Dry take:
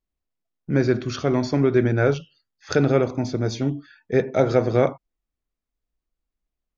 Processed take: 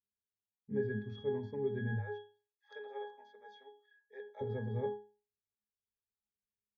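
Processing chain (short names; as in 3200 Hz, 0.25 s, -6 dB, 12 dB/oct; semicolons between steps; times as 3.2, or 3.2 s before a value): 1.99–4.41 HPF 630 Hz 24 dB/oct; octave resonator G#, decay 0.36 s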